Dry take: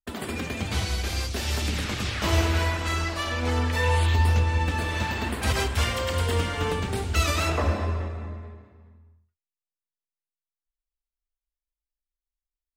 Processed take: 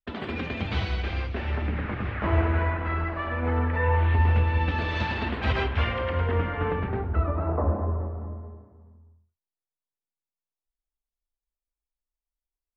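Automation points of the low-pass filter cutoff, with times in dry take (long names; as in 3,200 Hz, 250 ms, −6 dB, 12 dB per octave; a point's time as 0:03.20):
low-pass filter 24 dB per octave
0:00.83 3,600 Hz
0:01.72 2,000 Hz
0:03.93 2,000 Hz
0:04.98 4,400 Hz
0:06.36 2,100 Hz
0:06.87 2,100 Hz
0:07.32 1,100 Hz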